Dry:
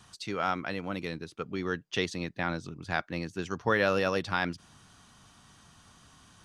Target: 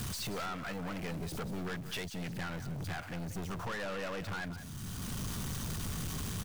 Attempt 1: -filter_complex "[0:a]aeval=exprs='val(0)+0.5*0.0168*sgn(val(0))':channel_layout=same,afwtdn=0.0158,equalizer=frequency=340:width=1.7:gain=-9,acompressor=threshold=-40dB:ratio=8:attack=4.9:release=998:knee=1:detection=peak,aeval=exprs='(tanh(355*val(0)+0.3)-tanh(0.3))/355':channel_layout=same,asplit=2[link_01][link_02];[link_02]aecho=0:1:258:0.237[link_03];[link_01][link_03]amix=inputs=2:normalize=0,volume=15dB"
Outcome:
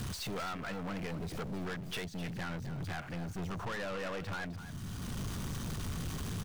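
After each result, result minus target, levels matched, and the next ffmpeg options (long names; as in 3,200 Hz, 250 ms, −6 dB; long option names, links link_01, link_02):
echo 73 ms late; 8,000 Hz band −4.0 dB
-filter_complex "[0:a]aeval=exprs='val(0)+0.5*0.0168*sgn(val(0))':channel_layout=same,afwtdn=0.0158,equalizer=frequency=340:width=1.7:gain=-9,acompressor=threshold=-40dB:ratio=8:attack=4.9:release=998:knee=1:detection=peak,aeval=exprs='(tanh(355*val(0)+0.3)-tanh(0.3))/355':channel_layout=same,asplit=2[link_01][link_02];[link_02]aecho=0:1:185:0.237[link_03];[link_01][link_03]amix=inputs=2:normalize=0,volume=15dB"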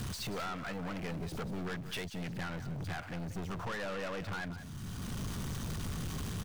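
8,000 Hz band −4.0 dB
-filter_complex "[0:a]aeval=exprs='val(0)+0.5*0.0168*sgn(val(0))':channel_layout=same,afwtdn=0.0158,equalizer=frequency=340:width=1.7:gain=-9,acompressor=threshold=-40dB:ratio=8:attack=4.9:release=998:knee=1:detection=peak,highshelf=frequency=5600:gain=9,aeval=exprs='(tanh(355*val(0)+0.3)-tanh(0.3))/355':channel_layout=same,asplit=2[link_01][link_02];[link_02]aecho=0:1:185:0.237[link_03];[link_01][link_03]amix=inputs=2:normalize=0,volume=15dB"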